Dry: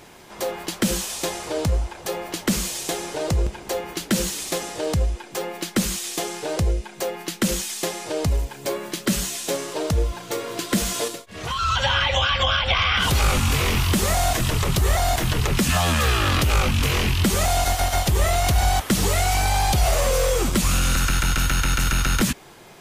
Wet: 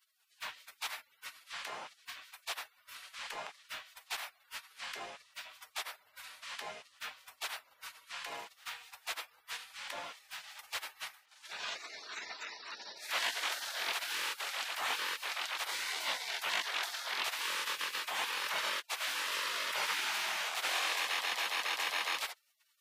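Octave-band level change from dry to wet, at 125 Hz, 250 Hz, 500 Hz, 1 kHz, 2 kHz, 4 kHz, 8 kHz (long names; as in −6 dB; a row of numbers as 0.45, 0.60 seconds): below −40 dB, −36.5 dB, −24.0 dB, −15.0 dB, −10.0 dB, −11.5 dB, −17.5 dB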